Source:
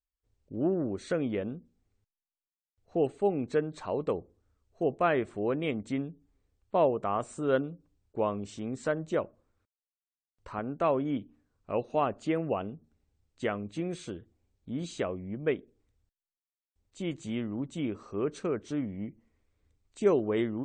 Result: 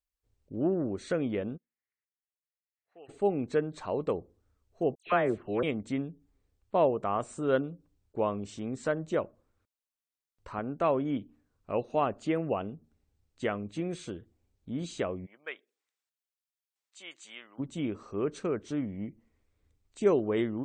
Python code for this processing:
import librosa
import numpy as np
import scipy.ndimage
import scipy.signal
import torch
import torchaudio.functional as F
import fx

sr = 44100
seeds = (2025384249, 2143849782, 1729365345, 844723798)

y = fx.bandpass_q(x, sr, hz=1900.0, q=4.5, at=(1.56, 3.08), fade=0.02)
y = fx.dispersion(y, sr, late='lows', ms=118.0, hz=2100.0, at=(4.95, 5.63))
y = fx.highpass(y, sr, hz=1200.0, slope=12, at=(15.25, 17.58), fade=0.02)